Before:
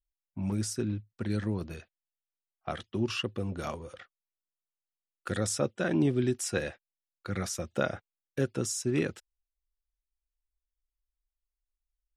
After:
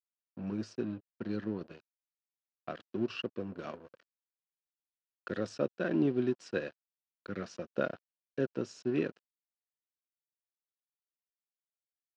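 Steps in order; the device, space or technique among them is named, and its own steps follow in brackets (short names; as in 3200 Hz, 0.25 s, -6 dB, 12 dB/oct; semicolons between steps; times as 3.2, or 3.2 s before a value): blown loudspeaker (crossover distortion -43 dBFS; speaker cabinet 200–4100 Hz, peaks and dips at 830 Hz -9 dB, 1200 Hz -4 dB, 2100 Hz -10 dB, 3500 Hz -9 dB)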